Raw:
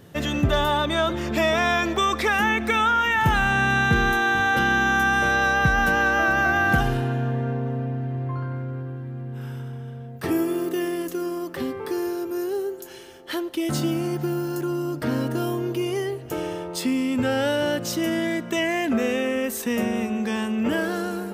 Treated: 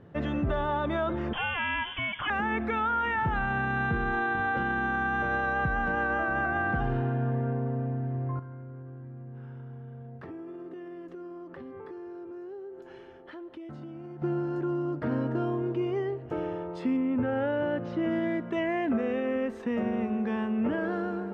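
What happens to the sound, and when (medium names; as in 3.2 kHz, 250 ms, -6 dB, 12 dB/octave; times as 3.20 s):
1.33–2.30 s: frequency inversion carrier 3.4 kHz
8.39–14.22 s: compression, threshold -36 dBFS
16.96–18.08 s: low-pass 2 kHz -> 4.2 kHz
whole clip: low-pass 1.6 kHz 12 dB/octave; peak limiter -16.5 dBFS; trim -3.5 dB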